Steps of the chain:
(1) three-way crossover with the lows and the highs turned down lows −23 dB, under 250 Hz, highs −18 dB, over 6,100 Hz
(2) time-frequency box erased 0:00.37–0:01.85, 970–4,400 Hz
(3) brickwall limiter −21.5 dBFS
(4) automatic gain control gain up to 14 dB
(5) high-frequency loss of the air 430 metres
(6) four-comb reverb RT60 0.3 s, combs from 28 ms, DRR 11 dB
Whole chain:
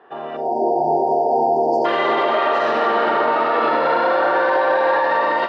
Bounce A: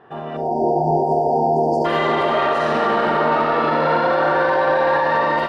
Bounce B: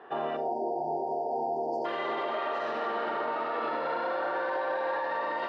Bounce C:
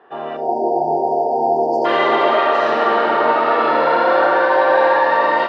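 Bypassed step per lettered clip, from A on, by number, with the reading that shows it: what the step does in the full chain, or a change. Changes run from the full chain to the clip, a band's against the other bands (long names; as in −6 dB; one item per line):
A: 1, 125 Hz band +13.5 dB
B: 4, change in momentary loudness spread −1 LU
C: 3, average gain reduction 5.0 dB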